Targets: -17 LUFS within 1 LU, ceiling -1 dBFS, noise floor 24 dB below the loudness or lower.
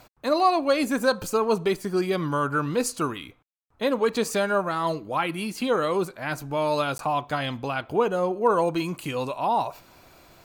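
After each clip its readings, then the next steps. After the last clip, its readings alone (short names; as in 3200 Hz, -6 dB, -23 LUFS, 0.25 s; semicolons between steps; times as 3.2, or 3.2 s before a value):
dropouts 1; longest dropout 12 ms; loudness -25.5 LUFS; peak -10.0 dBFS; loudness target -17.0 LUFS
-> interpolate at 6.98, 12 ms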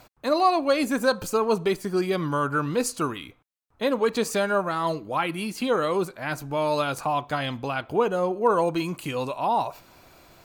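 dropouts 0; loudness -25.5 LUFS; peak -10.0 dBFS; loudness target -17.0 LUFS
-> gain +8.5 dB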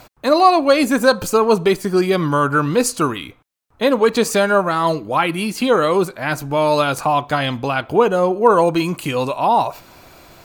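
loudness -17.0 LUFS; peak -1.5 dBFS; noise floor -55 dBFS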